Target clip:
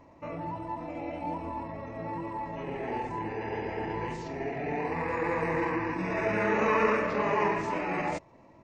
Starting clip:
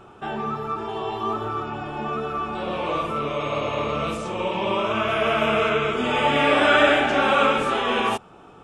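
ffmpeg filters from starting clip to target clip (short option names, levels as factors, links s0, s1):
-af "asetrate=33038,aresample=44100,atempo=1.33484,volume=0.398"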